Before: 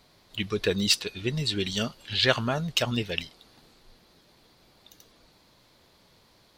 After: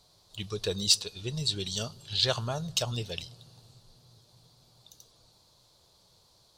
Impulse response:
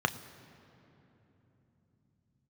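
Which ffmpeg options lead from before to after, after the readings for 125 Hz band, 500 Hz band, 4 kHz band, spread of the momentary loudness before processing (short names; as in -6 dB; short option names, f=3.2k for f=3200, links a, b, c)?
-3.0 dB, -6.0 dB, -1.5 dB, 10 LU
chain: -filter_complex "[0:a]equalizer=f=125:t=o:w=1:g=7,equalizer=f=250:t=o:w=1:g=-10,equalizer=f=2k:t=o:w=1:g=-11,equalizer=f=4k:t=o:w=1:g=5,equalizer=f=8k:t=o:w=1:g=8,asplit=2[a][b];[1:a]atrim=start_sample=2205[c];[b][c]afir=irnorm=-1:irlink=0,volume=-22.5dB[d];[a][d]amix=inputs=2:normalize=0,volume=-4.5dB"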